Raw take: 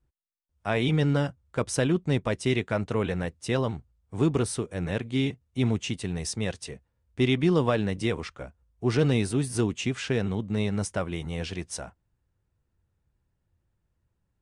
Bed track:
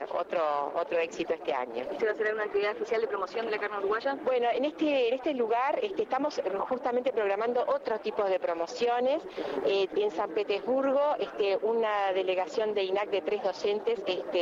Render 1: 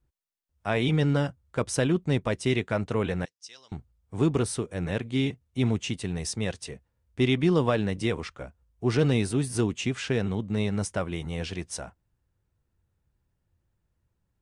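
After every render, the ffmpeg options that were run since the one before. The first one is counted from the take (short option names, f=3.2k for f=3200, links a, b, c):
-filter_complex "[0:a]asettb=1/sr,asplit=3[a][b][c];[a]atrim=end=3.254[d];[b]atrim=start=3.25:end=3.72,asetpts=PTS-STARTPTS,afade=t=in:d=0.004:c=qsin,afade=t=out:st=0.466:d=0.004:c=qsin,bandpass=f=5.5k:t=q:w=3.4[e];[c]atrim=start=3.716[f];[d][e]acrossfade=d=0.004:c1=hsin:c2=qsin[g];[g][f]acrossfade=d=0.004:c1=qsin:c2=hsin"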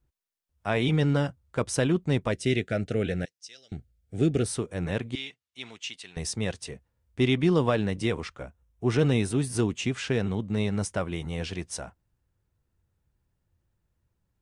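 -filter_complex "[0:a]asettb=1/sr,asplit=3[a][b][c];[a]atrim=end=2.324[d];[b]atrim=start=2.32:end=4.45,asetpts=PTS-STARTPTS,afade=t=in:d=0.004:c=qsin,afade=t=out:st=2.126:d=0.004:c=qsin,asuperstop=centerf=1000:order=4:qfactor=1.4[e];[c]atrim=start=4.446[f];[d][e]acrossfade=d=0.004:c1=hsin:c2=qsin[g];[g][f]acrossfade=d=0.004:c1=qsin:c2=hsin,asettb=1/sr,asplit=3[h][i][j];[h]atrim=end=5.154[k];[i]atrim=start=5.15:end=6.17,asetpts=PTS-STARTPTS,afade=t=in:d=0.004:c=qsin,afade=t=out:st=1.016:d=0.004:c=qsin,bandpass=f=3.7k:t=q:w=0.86[l];[j]atrim=start=6.166[m];[k][l]acrossfade=d=0.004:c1=hsin:c2=qsin[n];[n][m]acrossfade=d=0.004:c1=qsin:c2=hsin,asettb=1/sr,asplit=3[o][p][q];[o]atrim=end=8.434[r];[p]atrim=start=8.43:end=9.31,asetpts=PTS-STARTPTS,afade=t=in:d=0.004:c=qsin,afade=t=out:st=0.876:d=0.004:c=qsin,bandreject=f=4.6k:w=5.8[s];[q]atrim=start=9.306[t];[r][s]acrossfade=d=0.004:c1=hsin:c2=qsin[u];[u][t]acrossfade=d=0.004:c1=qsin:c2=hsin"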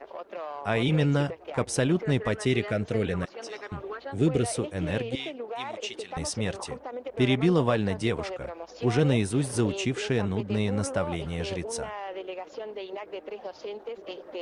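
-filter_complex "[1:a]volume=-8.5dB[a];[0:a][a]amix=inputs=2:normalize=0"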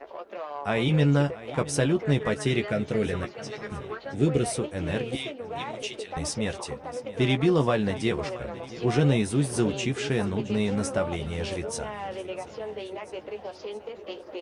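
-filter_complex "[0:a]asplit=2[a][b];[b]adelay=14,volume=-7.5dB[c];[a][c]amix=inputs=2:normalize=0,aecho=1:1:670|1340|2010|2680|3350:0.141|0.0791|0.0443|0.0248|0.0139"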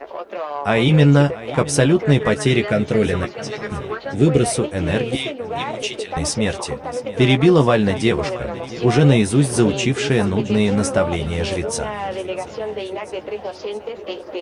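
-af "volume=9dB,alimiter=limit=-3dB:level=0:latency=1"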